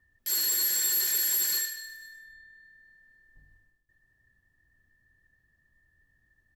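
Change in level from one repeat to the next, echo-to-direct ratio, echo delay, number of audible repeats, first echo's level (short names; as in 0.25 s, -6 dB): -4.5 dB, -15.0 dB, 0.118 s, 4, -17.0 dB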